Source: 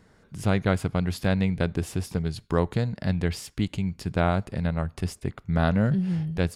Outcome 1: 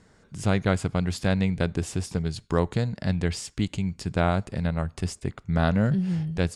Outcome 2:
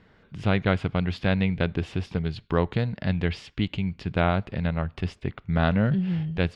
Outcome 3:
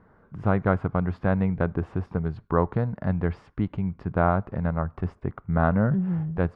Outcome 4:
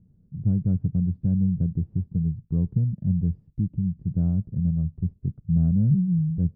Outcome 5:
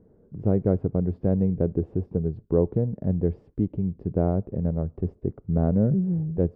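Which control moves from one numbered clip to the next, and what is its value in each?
low-pass with resonance, frequency: 8,000, 3,100, 1,200, 160, 440 Hertz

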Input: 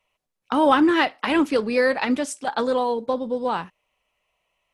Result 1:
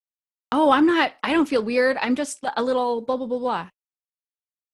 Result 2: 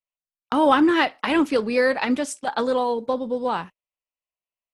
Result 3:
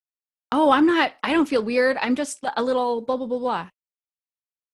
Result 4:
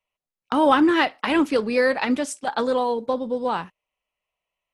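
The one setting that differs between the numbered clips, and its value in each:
noise gate, range: −57, −26, −43, −11 decibels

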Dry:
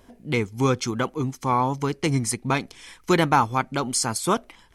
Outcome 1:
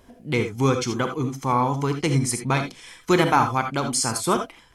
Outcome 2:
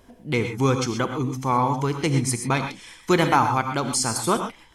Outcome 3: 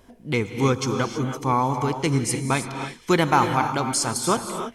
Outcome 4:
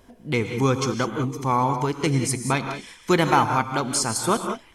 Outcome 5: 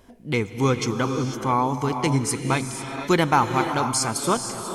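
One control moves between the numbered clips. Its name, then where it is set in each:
reverb whose tail is shaped and stops, gate: 100, 150, 350, 220, 520 milliseconds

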